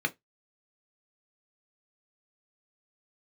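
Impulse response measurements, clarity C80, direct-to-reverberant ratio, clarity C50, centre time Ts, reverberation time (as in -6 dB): 36.5 dB, 5.5 dB, 25.0 dB, 4 ms, 0.15 s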